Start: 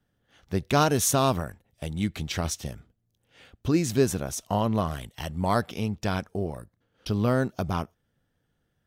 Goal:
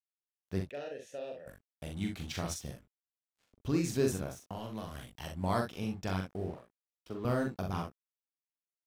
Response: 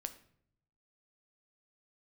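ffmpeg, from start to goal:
-filter_complex "[0:a]asettb=1/sr,asplit=3[link_01][link_02][link_03];[link_01]atrim=end=4.294[link_04];[link_02]atrim=start=4.29:end=4.95,asetpts=PTS-STARTPTS,afade=type=in:duration=0.004:curve=qsin,afade=type=out:start_time=0.656:duration=0.004:curve=qsin,acrossover=split=450|2300[link_05][link_06][link_07];[link_05]acompressor=threshold=-32dB:ratio=4[link_08];[link_06]acompressor=threshold=-37dB:ratio=4[link_09];[link_07]acompressor=threshold=-43dB:ratio=4[link_10];[link_08][link_09][link_10]amix=inputs=3:normalize=0[link_11];[link_03]atrim=start=4.946[link_12];[link_04][link_11]acrossfade=duration=0.004:curve1=hsin:curve2=qsin[link_13];[link_13][link_12]acrossfade=duration=0.004:curve1=qsin:curve2=hsin,asettb=1/sr,asplit=3[link_14][link_15][link_16];[link_14]atrim=end=6.504[link_17];[link_15]atrim=start=6.5:end=7.25,asetpts=PTS-STARTPTS,afade=type=in:duration=0.004:curve=qsin,afade=type=out:start_time=0.746:duration=0.004:curve=qsin,acrossover=split=260 2200:gain=0.251 1 0.224[link_18][link_19][link_20];[link_18][link_19][link_20]amix=inputs=3:normalize=0[link_21];[link_16]atrim=start=7.246[link_22];[link_17][link_21]acrossfade=duration=0.004:curve1=hsin:curve2=qsin[link_23];[link_23][link_22]acrossfade=duration=0.004:curve1=qsin:curve2=hsin,aeval=exprs='sgn(val(0))*max(abs(val(0))-0.00422,0)':channel_layout=same,asplit=3[link_24][link_25][link_26];[link_24]afade=type=out:start_time=0.69:duration=0.02[link_27];[link_25]asplit=3[link_28][link_29][link_30];[link_28]bandpass=frequency=530:width_type=q:width=8,volume=0dB[link_31];[link_29]bandpass=frequency=1840:width_type=q:width=8,volume=-6dB[link_32];[link_30]bandpass=frequency=2480:width_type=q:width=8,volume=-9dB[link_33];[link_31][link_32][link_33]amix=inputs=3:normalize=0,afade=type=in:start_time=0.69:duration=0.02,afade=type=out:start_time=1.46:duration=0.02[link_34];[link_26]afade=type=in:start_time=1.46:duration=0.02[link_35];[link_27][link_34][link_35]amix=inputs=3:normalize=0,asplit=2[link_36][link_37];[link_37]aecho=0:1:42|64:0.631|0.376[link_38];[link_36][link_38]amix=inputs=2:normalize=0,volume=-8.5dB"

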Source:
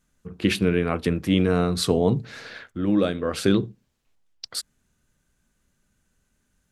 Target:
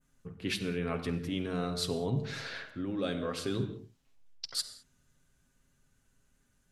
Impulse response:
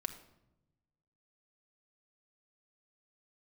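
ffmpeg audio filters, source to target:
-filter_complex "[0:a]adynamicequalizer=threshold=0.00891:dfrequency=4800:dqfactor=0.7:tfrequency=4800:tqfactor=0.7:attack=5:release=100:ratio=0.375:range=2.5:mode=boostabove:tftype=bell,areverse,acompressor=threshold=-28dB:ratio=6,areverse[link_01];[1:a]atrim=start_sample=2205,atrim=end_sample=6174,asetrate=27342,aresample=44100[link_02];[link_01][link_02]afir=irnorm=-1:irlink=0,volume=-4dB"

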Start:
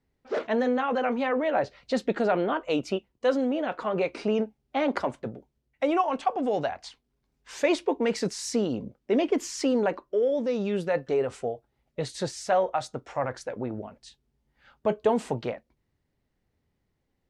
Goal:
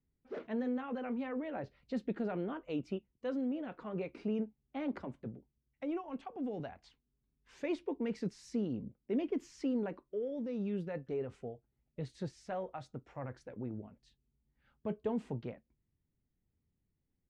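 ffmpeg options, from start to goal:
ffmpeg -i in.wav -filter_complex "[0:a]firequalizer=gain_entry='entry(180,0);entry(610,-12);entry(2400,-10);entry(3900,-14);entry(8000,-19)':delay=0.05:min_phase=1,asettb=1/sr,asplit=3[link_01][link_02][link_03];[link_01]atrim=end=4.934[link_04];[link_02]atrim=start=4.93:end=6.6,asetpts=PTS-STARTPTS,afade=type=in:duration=0.004:curve=qsin,afade=type=out:start_time=1.666:duration=0.004:curve=qsin,acrossover=split=450[link_05][link_06];[link_06]acompressor=threshold=-38dB:ratio=6[link_07];[link_05][link_07]amix=inputs=2:normalize=0[link_08];[link_03]atrim=start=6.596[link_09];[link_04][link_08]acrossfade=duration=0.004:curve1=hsin:curve2=qsin[link_10];[link_10][link_09]acrossfade=duration=0.004:curve1=qsin:curve2=hsin,volume=-5.5dB" out.wav

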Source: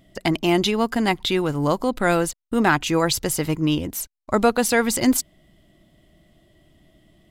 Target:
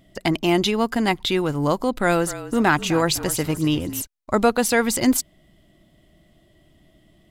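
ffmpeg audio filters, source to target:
ffmpeg -i in.wav -filter_complex "[0:a]asettb=1/sr,asplit=3[link_01][link_02][link_03];[link_01]atrim=end=1.984[link_04];[link_02]atrim=start=1.98:end=4.02,asetpts=PTS-STARTPTS,afade=type=in:duration=0.004:curve=qsin,afade=type=out:start_time=2.036:duration=0.004:curve=qsin,asplit=4[link_05][link_06][link_07][link_08];[link_06]adelay=253,afreqshift=-36,volume=-14dB[link_09];[link_07]adelay=506,afreqshift=-72,volume=-23.6dB[link_10];[link_08]adelay=759,afreqshift=-108,volume=-33.3dB[link_11];[link_05][link_09][link_10][link_11]amix=inputs=4:normalize=0,atrim=end_sample=89964[link_12];[link_03]atrim=start=4.016[link_13];[link_04][link_12]acrossfade=duration=0.004:curve1=hsin:curve2=qsin[link_14];[link_14][link_13]acrossfade=duration=0.004:curve1=qsin:curve2=hsin" out.wav

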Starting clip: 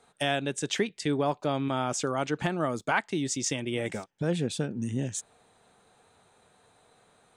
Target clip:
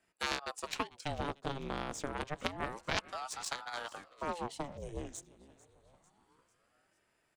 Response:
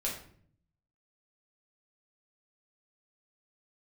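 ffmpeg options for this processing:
-filter_complex "[0:a]aeval=exprs='0.266*(cos(1*acos(clip(val(0)/0.266,-1,1)))-cos(1*PI/2))+0.075*(cos(3*acos(clip(val(0)/0.266,-1,1)))-cos(3*PI/2))+0.00211*(cos(6*acos(clip(val(0)/0.266,-1,1)))-cos(6*PI/2))':channel_layout=same,acrossover=split=140|3000[link_01][link_02][link_03];[link_02]acompressor=threshold=-39dB:ratio=2[link_04];[link_01][link_04][link_03]amix=inputs=3:normalize=0,asplit=2[link_05][link_06];[link_06]asplit=4[link_07][link_08][link_09][link_10];[link_07]adelay=446,afreqshift=32,volume=-19.5dB[link_11];[link_08]adelay=892,afreqshift=64,volume=-24.9dB[link_12];[link_09]adelay=1338,afreqshift=96,volume=-30.2dB[link_13];[link_10]adelay=1784,afreqshift=128,volume=-35.6dB[link_14];[link_11][link_12][link_13][link_14]amix=inputs=4:normalize=0[link_15];[link_05][link_15]amix=inputs=2:normalize=0,aeval=exprs='val(0)*sin(2*PI*600*n/s+600*0.85/0.28*sin(2*PI*0.28*n/s))':channel_layout=same,volume=5.5dB"

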